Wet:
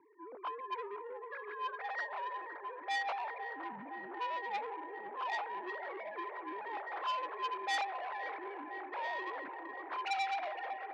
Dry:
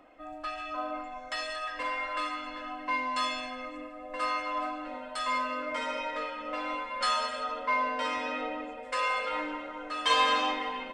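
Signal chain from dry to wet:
three sine waves on the formant tracks
delay that swaps between a low-pass and a high-pass 256 ms, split 900 Hz, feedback 86%, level −10 dB
single-sideband voice off tune −230 Hz 330–2,500 Hz
saturating transformer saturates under 3,000 Hz
level −6 dB

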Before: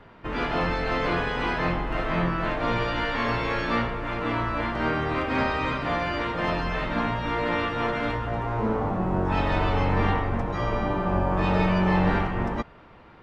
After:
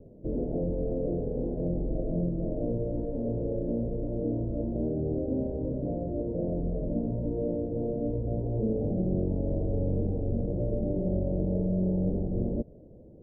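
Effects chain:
downward compressor, threshold −25 dBFS, peak gain reduction 7.5 dB
elliptic low-pass filter 570 Hz, stop band 50 dB
level +2.5 dB

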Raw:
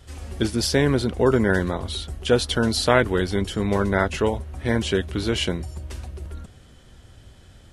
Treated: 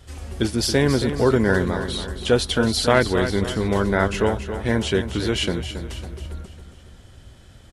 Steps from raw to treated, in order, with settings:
in parallel at −11.5 dB: soft clipping −11 dBFS, distortion −16 dB
on the sum: repeating echo 275 ms, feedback 44%, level −10 dB
level −1 dB

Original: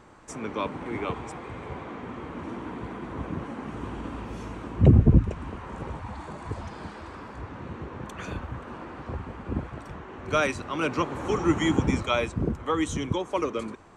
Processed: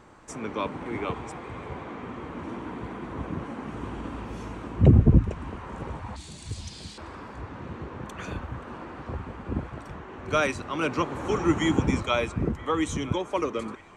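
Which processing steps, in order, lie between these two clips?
0:06.16–0:06.98: drawn EQ curve 120 Hz 0 dB, 1,200 Hz −18 dB, 4,000 Hz +13 dB
on a send: delay with a band-pass on its return 969 ms, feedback 55%, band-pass 1,400 Hz, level −17.5 dB

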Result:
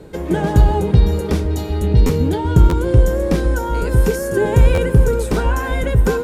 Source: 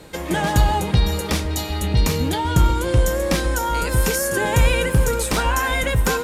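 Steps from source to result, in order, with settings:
tilt shelving filter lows +7 dB, about 810 Hz
hollow resonant body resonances 410/1,500 Hz, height 8 dB
buffer that repeats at 0:02.06/0:02.69/0:04.74, samples 512, times 2
level −1.5 dB

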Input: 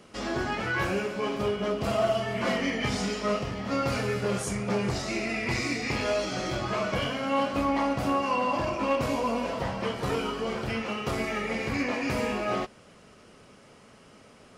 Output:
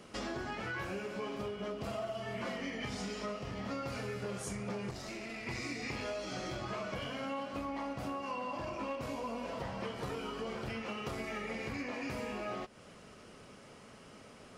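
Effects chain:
downward compressor 6 to 1, threshold −36 dBFS, peak gain reduction 14 dB
0:04.91–0:05.47: tube saturation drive 36 dB, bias 0.6
level −1 dB

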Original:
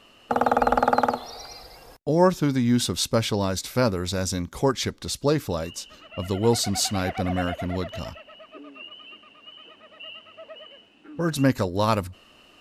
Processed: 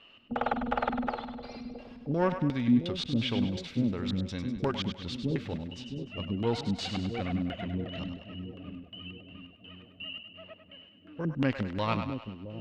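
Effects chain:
one-sided soft clipper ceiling −13 dBFS
auto-filter low-pass square 2.8 Hz 240–3,000 Hz
echo with a time of its own for lows and highs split 530 Hz, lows 668 ms, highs 100 ms, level −8 dB
level −8 dB

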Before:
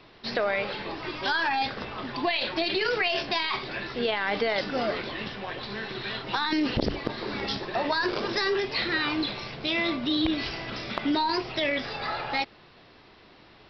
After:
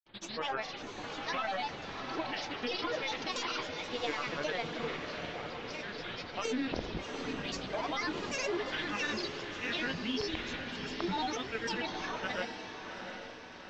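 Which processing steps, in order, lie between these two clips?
Chebyshev low-pass filter 3,800 Hz, order 2
hum removal 53.05 Hz, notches 29
granular cloud, pitch spread up and down by 7 semitones
on a send: feedback delay with all-pass diffusion 743 ms, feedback 52%, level −7 dB
on the sum: level −6.5 dB

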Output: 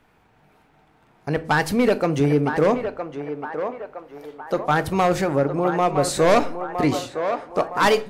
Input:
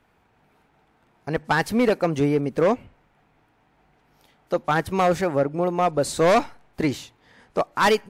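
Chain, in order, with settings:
in parallel at 0 dB: brickwall limiter −20 dBFS, peak gain reduction 7 dB
on the sum: feedback echo with a band-pass in the loop 963 ms, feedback 58%, band-pass 900 Hz, level −6 dB
rectangular room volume 270 cubic metres, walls furnished, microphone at 0.47 metres
level −2.5 dB

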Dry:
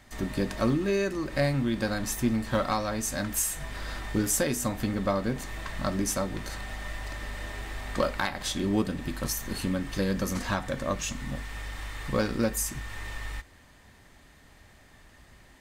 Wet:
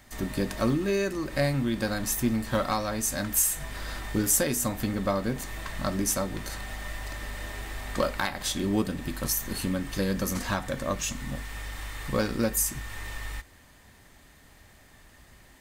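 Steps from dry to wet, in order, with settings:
high-shelf EQ 9,900 Hz +10 dB

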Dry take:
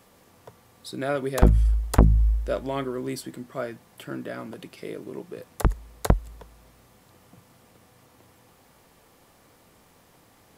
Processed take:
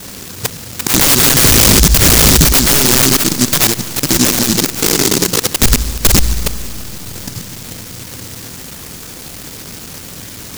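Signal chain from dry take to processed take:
reversed piece by piece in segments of 72 ms
wrap-around overflow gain 15 dB
harmonic generator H 2 −16 dB, 5 −25 dB, 7 −20 dB, 8 −40 dB, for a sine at −15 dBFS
wrap-around overflow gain 26 dB
four-comb reverb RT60 3.1 s, combs from 26 ms, DRR 20 dB
boost into a limiter +33.5 dB
short delay modulated by noise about 5,700 Hz, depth 0.45 ms
level −1 dB

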